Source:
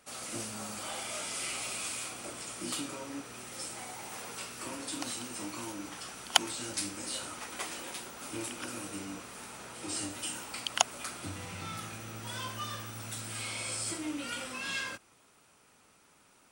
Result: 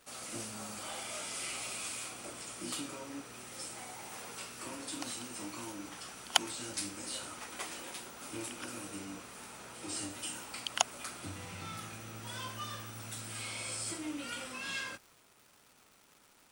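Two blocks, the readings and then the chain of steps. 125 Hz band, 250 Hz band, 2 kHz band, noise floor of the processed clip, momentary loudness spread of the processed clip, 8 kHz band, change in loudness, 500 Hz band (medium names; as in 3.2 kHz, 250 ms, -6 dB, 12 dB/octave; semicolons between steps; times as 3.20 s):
-3.0 dB, -3.0 dB, -3.0 dB, -64 dBFS, 9 LU, -3.0 dB, -3.0 dB, -3.0 dB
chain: crackle 490 per s -48 dBFS; trim -3 dB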